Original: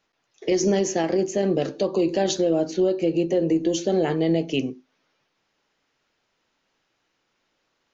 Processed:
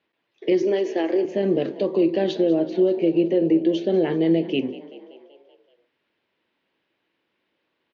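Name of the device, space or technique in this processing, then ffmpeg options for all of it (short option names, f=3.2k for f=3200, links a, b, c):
frequency-shifting delay pedal into a guitar cabinet: -filter_complex "[0:a]asettb=1/sr,asplit=3[a][b][c];[a]atrim=end=0.624[d];[b]atrim=start=0.62:end=1.25,asetpts=PTS-STARTPTS,afade=t=in:d=0.004:c=qsin,afade=t=out:st=0.626:d=0.004:c=qsin,highpass=f=290:w=0.5412,highpass=f=290:w=1.3066[e];[c]atrim=start=1.246[f];[d][e]acrossfade=d=0.004:c1=hsin:c2=qsin[g];[g][f]acrossfade=d=0.004:c1=qsin:c2=hsin,asplit=7[h][i][j][k][l][m][n];[i]adelay=191,afreqshift=38,volume=-17.5dB[o];[j]adelay=382,afreqshift=76,volume=-21.7dB[p];[k]adelay=573,afreqshift=114,volume=-25.8dB[q];[l]adelay=764,afreqshift=152,volume=-30dB[r];[m]adelay=955,afreqshift=190,volume=-34.1dB[s];[n]adelay=1146,afreqshift=228,volume=-38.3dB[t];[h][o][p][q][r][s][t]amix=inputs=7:normalize=0,highpass=100,equalizer=f=130:t=q:w=4:g=-5,equalizer=f=340:t=q:w=4:g=4,equalizer=f=760:t=q:w=4:g=-5,equalizer=f=1.3k:t=q:w=4:g=-7,lowpass=f=3.6k:w=0.5412,lowpass=f=3.6k:w=1.3066"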